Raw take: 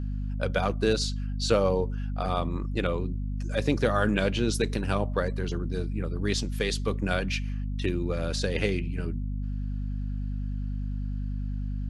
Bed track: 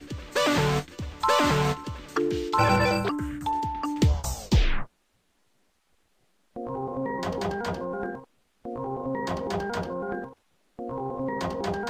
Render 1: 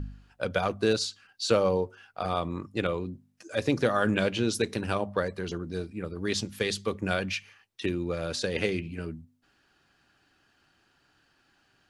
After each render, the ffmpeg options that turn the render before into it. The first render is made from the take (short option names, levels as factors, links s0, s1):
-af "bandreject=f=50:t=h:w=4,bandreject=f=100:t=h:w=4,bandreject=f=150:t=h:w=4,bandreject=f=200:t=h:w=4,bandreject=f=250:t=h:w=4"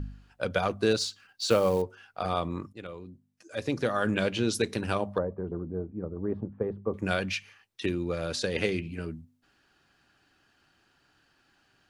-filter_complex "[0:a]asettb=1/sr,asplit=3[s0][s1][s2];[s0]atrim=end=0.984[s3];[s1]atrim=start=0.98:end=1.82,asetpts=PTS-STARTPTS,afade=t=in:d=0.004:c=qsin,afade=t=out:st=0.836:d=0.004:c=qsin,acrusher=bits=6:mode=log:mix=0:aa=0.000001[s4];[s2]atrim=start=1.816[s5];[s3][s4]acrossfade=d=0.004:c1=hsin:c2=qsin[s6];[s6][s5]acrossfade=d=0.004:c1=qsin:c2=hsin,asettb=1/sr,asplit=3[s7][s8][s9];[s7]atrim=end=5.184[s10];[s8]atrim=start=5.18:end=6.94,asetpts=PTS-STARTPTS,afade=t=in:d=0.004:c=qsin,afade=t=out:st=1.756:d=0.004:c=qsin,lowpass=f=1000:w=0.5412,lowpass=f=1000:w=1.3066[s11];[s9]atrim=start=6.936[s12];[s10][s11]acrossfade=d=0.004:c1=hsin:c2=qsin[s13];[s13][s12]acrossfade=d=0.004:c1=qsin:c2=hsin,asplit=2[s14][s15];[s14]atrim=end=2.73,asetpts=PTS-STARTPTS,afade=t=out:st=2.726:d=0.004:c=hsin:silence=0.16788[s16];[s15]atrim=start=2.73,asetpts=PTS-STARTPTS,afade=t=in:d=1.78:silence=0.16788[s17];[s16][s17]concat=n=2:v=0:a=1"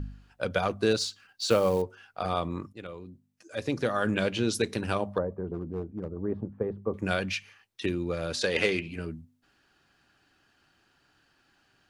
-filter_complex "[0:a]asettb=1/sr,asplit=3[s0][s1][s2];[s0]atrim=end=5.544[s3];[s1]atrim=start=5.54:end=6.11,asetpts=PTS-STARTPTS,afade=t=in:d=0.004:c=qsin,afade=t=out:st=0.566:d=0.004:c=qsin,volume=22.4,asoftclip=hard,volume=0.0447[s4];[s2]atrim=start=6.106[s5];[s3][s4]acrossfade=d=0.004:c1=hsin:c2=qsin[s6];[s6][s5]acrossfade=d=0.004:c1=qsin:c2=hsin,asettb=1/sr,asplit=3[s7][s8][s9];[s7]atrim=end=8.414[s10];[s8]atrim=start=8.41:end=8.96,asetpts=PTS-STARTPTS,afade=t=in:d=0.004:c=qsin,afade=t=out:st=0.546:d=0.004:c=qsin,asplit=2[s11][s12];[s12]highpass=f=720:p=1,volume=3.98,asoftclip=type=tanh:threshold=0.266[s13];[s11][s13]amix=inputs=2:normalize=0,lowpass=f=5600:p=1,volume=0.501[s14];[s9]atrim=start=8.956[s15];[s10][s14]acrossfade=d=0.004:c1=hsin:c2=qsin[s16];[s16][s15]acrossfade=d=0.004:c1=qsin:c2=hsin"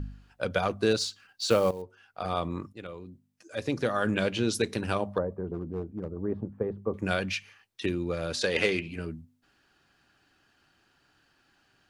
-filter_complex "[0:a]asplit=2[s0][s1];[s0]atrim=end=1.71,asetpts=PTS-STARTPTS,afade=t=out:st=1.706:d=0.004:c=hsin:silence=0.188365[s2];[s1]atrim=start=1.71,asetpts=PTS-STARTPTS,afade=t=in:d=0.73:silence=0.188365[s3];[s2][s3]concat=n=2:v=0:a=1"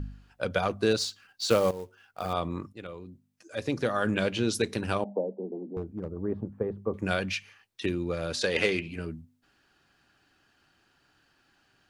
-filter_complex "[0:a]asettb=1/sr,asplit=3[s0][s1][s2];[s0]atrim=end=0.984[s3];[s1]atrim=start=0.98:end=2.33,asetpts=PTS-STARTPTS,afade=t=in:d=0.004:c=qsin,afade=t=out:st=1.346:d=0.004:c=qsin,acrusher=bits=5:mode=log:mix=0:aa=0.000001[s4];[s2]atrim=start=2.326[s5];[s3][s4]acrossfade=d=0.004:c1=hsin:c2=qsin[s6];[s6][s5]acrossfade=d=0.004:c1=qsin:c2=hsin,asettb=1/sr,asplit=3[s7][s8][s9];[s7]atrim=end=5.044[s10];[s8]atrim=start=5.04:end=5.77,asetpts=PTS-STARTPTS,afade=t=in:d=0.004:c=qsin,afade=t=out:st=0.726:d=0.004:c=qsin,asuperpass=centerf=410:order=20:qfactor=0.58[s11];[s9]atrim=start=5.766[s12];[s10][s11]acrossfade=d=0.004:c1=hsin:c2=qsin[s13];[s13][s12]acrossfade=d=0.004:c1=qsin:c2=hsin"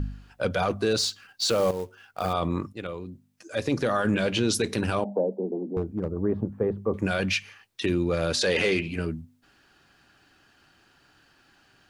-af "acontrast=64,alimiter=limit=0.168:level=0:latency=1:release=10"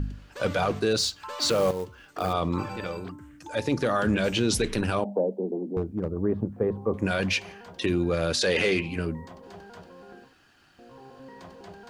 -filter_complex "[1:a]volume=0.158[s0];[0:a][s0]amix=inputs=2:normalize=0"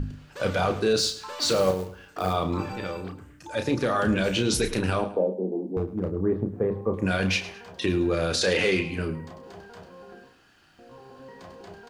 -filter_complex "[0:a]asplit=2[s0][s1];[s1]adelay=32,volume=0.447[s2];[s0][s2]amix=inputs=2:normalize=0,aecho=1:1:107|214|321:0.178|0.0551|0.0171"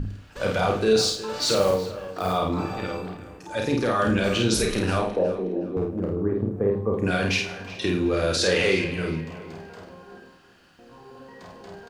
-filter_complex "[0:a]asplit=2[s0][s1];[s1]adelay=50,volume=0.708[s2];[s0][s2]amix=inputs=2:normalize=0,asplit=2[s3][s4];[s4]adelay=366,lowpass=f=3700:p=1,volume=0.188,asplit=2[s5][s6];[s6]adelay=366,lowpass=f=3700:p=1,volume=0.35,asplit=2[s7][s8];[s8]adelay=366,lowpass=f=3700:p=1,volume=0.35[s9];[s3][s5][s7][s9]amix=inputs=4:normalize=0"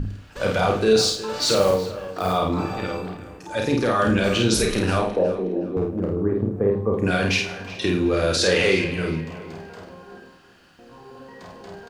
-af "volume=1.33"